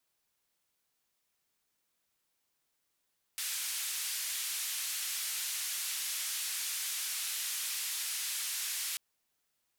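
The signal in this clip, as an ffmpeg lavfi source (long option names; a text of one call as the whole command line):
ffmpeg -f lavfi -i "anoisesrc=color=white:duration=5.59:sample_rate=44100:seed=1,highpass=frequency=2000,lowpass=frequency=13000,volume=-28.6dB" out.wav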